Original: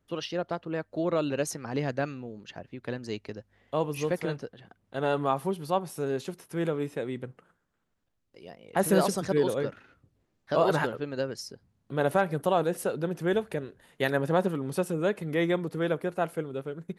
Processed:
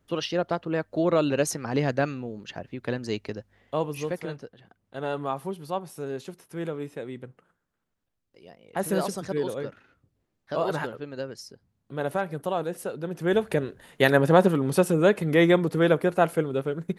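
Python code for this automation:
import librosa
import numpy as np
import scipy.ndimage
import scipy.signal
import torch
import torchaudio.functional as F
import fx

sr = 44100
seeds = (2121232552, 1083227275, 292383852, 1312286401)

y = fx.gain(x, sr, db=fx.line((3.32, 5.0), (4.25, -3.0), (13.01, -3.0), (13.53, 7.5)))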